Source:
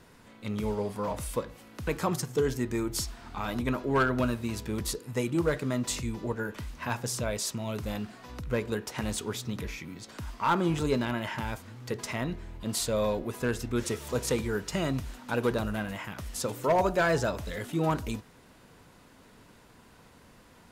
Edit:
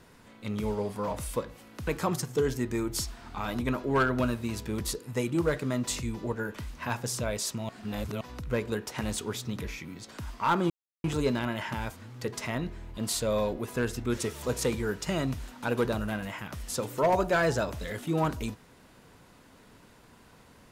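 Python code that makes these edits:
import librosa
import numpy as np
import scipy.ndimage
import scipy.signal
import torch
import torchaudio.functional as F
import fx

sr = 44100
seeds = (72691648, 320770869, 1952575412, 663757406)

y = fx.edit(x, sr, fx.reverse_span(start_s=7.69, length_s=0.52),
    fx.insert_silence(at_s=10.7, length_s=0.34), tone=tone)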